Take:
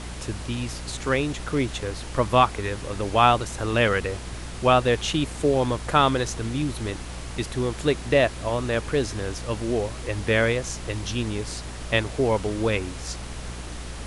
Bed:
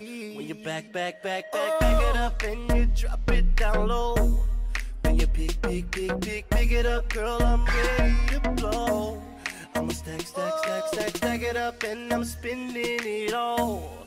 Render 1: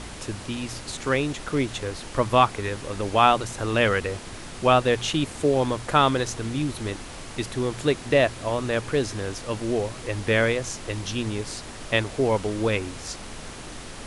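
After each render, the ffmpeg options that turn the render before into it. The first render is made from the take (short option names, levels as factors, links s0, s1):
-af "bandreject=f=60:t=h:w=4,bandreject=f=120:t=h:w=4,bandreject=f=180:t=h:w=4"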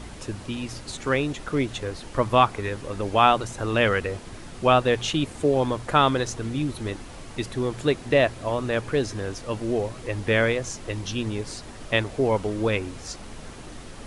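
-af "afftdn=nr=6:nf=-39"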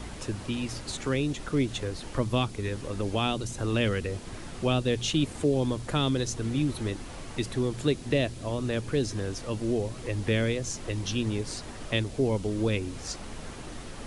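-filter_complex "[0:a]acrossover=split=400|3000[s0][s1][s2];[s1]acompressor=threshold=0.0112:ratio=3[s3];[s0][s3][s2]amix=inputs=3:normalize=0"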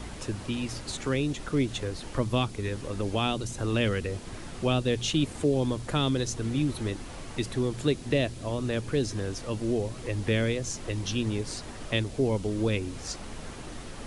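-af anull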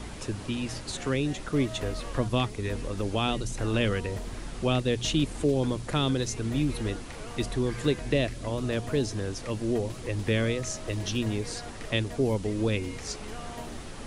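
-filter_complex "[1:a]volume=0.141[s0];[0:a][s0]amix=inputs=2:normalize=0"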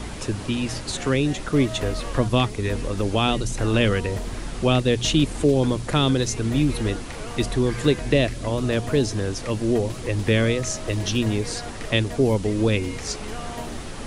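-af "volume=2.11"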